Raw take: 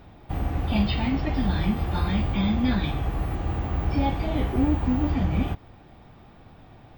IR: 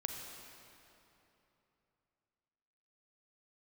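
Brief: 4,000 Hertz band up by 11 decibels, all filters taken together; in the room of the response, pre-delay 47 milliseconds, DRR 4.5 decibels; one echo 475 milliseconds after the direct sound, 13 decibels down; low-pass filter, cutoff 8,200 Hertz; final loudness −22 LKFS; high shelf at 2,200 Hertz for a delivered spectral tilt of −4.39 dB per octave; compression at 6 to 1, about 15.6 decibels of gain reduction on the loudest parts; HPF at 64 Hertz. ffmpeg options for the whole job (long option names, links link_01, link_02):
-filter_complex "[0:a]highpass=64,lowpass=8200,highshelf=frequency=2200:gain=6.5,equalizer=frequency=4000:width_type=o:gain=8,acompressor=threshold=-36dB:ratio=6,aecho=1:1:475:0.224,asplit=2[link_01][link_02];[1:a]atrim=start_sample=2205,adelay=47[link_03];[link_02][link_03]afir=irnorm=-1:irlink=0,volume=-5dB[link_04];[link_01][link_04]amix=inputs=2:normalize=0,volume=15.5dB"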